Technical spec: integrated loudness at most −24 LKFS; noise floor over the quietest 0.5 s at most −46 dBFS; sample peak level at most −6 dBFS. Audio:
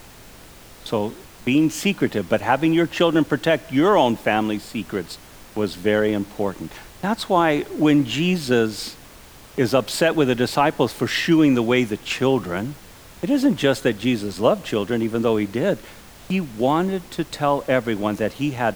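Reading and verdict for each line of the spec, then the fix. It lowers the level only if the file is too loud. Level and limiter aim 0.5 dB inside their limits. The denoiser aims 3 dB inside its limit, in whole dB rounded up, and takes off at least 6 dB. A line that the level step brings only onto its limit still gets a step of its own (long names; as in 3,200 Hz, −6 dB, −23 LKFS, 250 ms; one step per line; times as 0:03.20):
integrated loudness −21.0 LKFS: out of spec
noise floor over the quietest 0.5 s −44 dBFS: out of spec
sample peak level −5.0 dBFS: out of spec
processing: level −3.5 dB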